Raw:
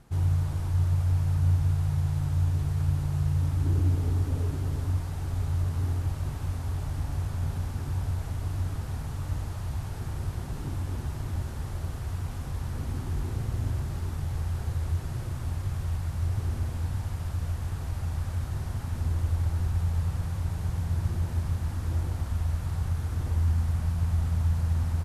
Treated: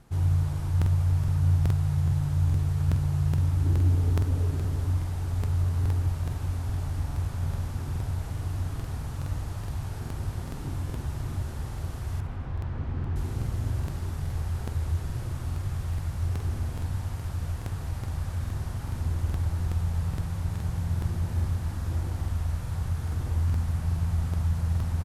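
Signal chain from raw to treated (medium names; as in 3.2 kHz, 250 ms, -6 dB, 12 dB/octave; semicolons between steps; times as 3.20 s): 12.18–13.16 s: low-pass 2.5 kHz 12 dB/octave; feedback delay 90 ms, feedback 55%, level -14 dB; crackling interface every 0.42 s, samples 2048, repeat, from 0.77 s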